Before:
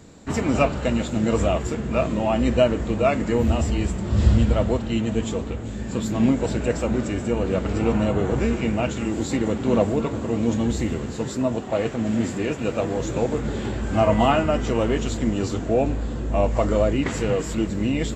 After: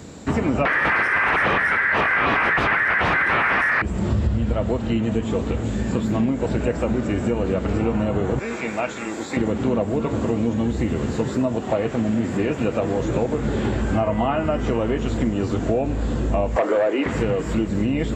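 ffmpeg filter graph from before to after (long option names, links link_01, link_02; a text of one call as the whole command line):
ffmpeg -i in.wav -filter_complex "[0:a]asettb=1/sr,asplit=3[link_01][link_02][link_03];[link_01]atrim=end=0.654[link_04];[link_02]atrim=start=0.65:end=3.82,asetpts=PTS-STARTPTS,afade=type=in:duration=0.004:curve=qsin,afade=type=out:start_time=3.166:duration=0.004:curve=qsin,aeval=exprs='0.501*sin(PI/2*6.31*val(0)/0.501)':channel_layout=same,aeval=exprs='val(0)*sin(2*PI*1800*n/s)':channel_layout=same,equalizer=frequency=3500:width=0.71:gain=-5.5[link_05];[link_03]atrim=start=3.816[link_06];[link_04][link_05]acrossfade=duration=0.004:curve1=hsin:curve2=qsin[link_07];[link_07][link_06]acrossfade=duration=0.004:curve1=qsin:curve2=hsin,asettb=1/sr,asplit=3[link_08][link_09][link_10];[link_08]atrim=end=8.394[link_11];[link_09]atrim=start=8.39:end=9.37,asetpts=PTS-STARTPTS,afade=type=in:duration=0.004:curve=qsin,afade=type=out:start_time=0.976:duration=0.004:curve=qsin,highpass=frequency=1200:poles=1,bandreject=frequency=2900:width=6.9[link_12];[link_10]atrim=start=9.366[link_13];[link_11][link_12]acrossfade=duration=0.004:curve1=hsin:curve2=qsin[link_14];[link_14][link_13]acrossfade=duration=0.004:curve1=qsin:curve2=hsin,asettb=1/sr,asplit=3[link_15][link_16][link_17];[link_15]atrim=end=16.564[link_18];[link_16]atrim=start=16.56:end=17.06,asetpts=PTS-STARTPTS,afade=type=in:duration=0.004:curve=qsin,afade=type=out:start_time=0.496:duration=0.004:curve=qsin,highpass=frequency=340:width=0.5412,highpass=frequency=340:width=1.3066,aeval=exprs='0.316*sin(PI/2*1.78*val(0)/0.316)':channel_layout=same[link_19];[link_17]atrim=start=17.056[link_20];[link_18][link_19]acrossfade=duration=0.004:curve1=hsin:curve2=qsin[link_21];[link_21][link_20]acrossfade=duration=0.004:curve1=qsin:curve2=hsin,acrossover=split=2700[link_22][link_23];[link_23]acompressor=threshold=-48dB:ratio=4:attack=1:release=60[link_24];[link_22][link_24]amix=inputs=2:normalize=0,highpass=48,acompressor=threshold=-26dB:ratio=6,volume=8dB" out.wav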